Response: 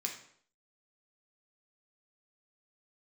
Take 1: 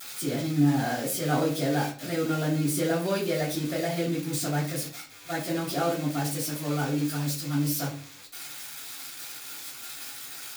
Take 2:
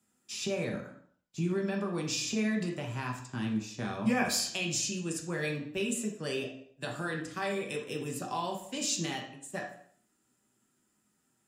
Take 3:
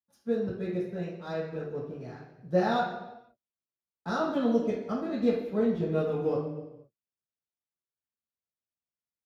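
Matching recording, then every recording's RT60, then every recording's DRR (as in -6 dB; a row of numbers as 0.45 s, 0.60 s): 2; 0.45 s, 0.60 s, no single decay rate; -13.0 dB, 0.5 dB, -7.5 dB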